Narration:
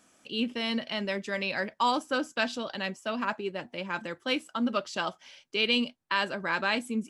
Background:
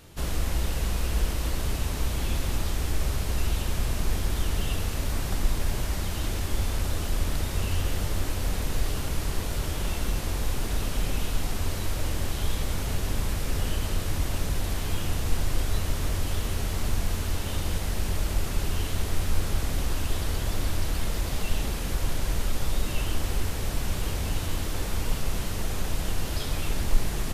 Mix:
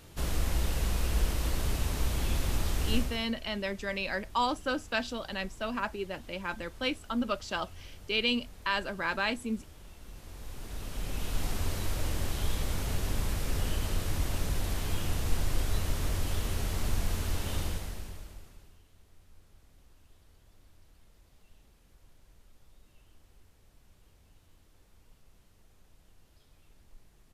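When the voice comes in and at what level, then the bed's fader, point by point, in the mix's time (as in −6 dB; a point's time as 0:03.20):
2.55 s, −2.5 dB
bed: 0:02.97 −2.5 dB
0:03.34 −22 dB
0:09.97 −22 dB
0:11.44 −3.5 dB
0:17.62 −3.5 dB
0:18.83 −33 dB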